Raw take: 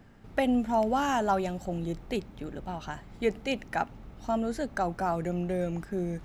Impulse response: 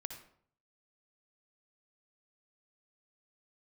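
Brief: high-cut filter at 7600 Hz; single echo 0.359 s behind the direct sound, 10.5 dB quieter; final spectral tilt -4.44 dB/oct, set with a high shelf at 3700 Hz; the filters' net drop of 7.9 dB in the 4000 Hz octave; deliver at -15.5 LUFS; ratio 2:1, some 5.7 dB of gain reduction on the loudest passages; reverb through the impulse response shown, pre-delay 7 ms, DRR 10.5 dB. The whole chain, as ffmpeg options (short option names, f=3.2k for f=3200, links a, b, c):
-filter_complex "[0:a]lowpass=7.6k,highshelf=f=3.7k:g=-6.5,equalizer=f=4k:t=o:g=-8,acompressor=threshold=-32dB:ratio=2,aecho=1:1:359:0.299,asplit=2[a][b];[1:a]atrim=start_sample=2205,adelay=7[c];[b][c]afir=irnorm=-1:irlink=0,volume=-8dB[d];[a][d]amix=inputs=2:normalize=0,volume=19dB"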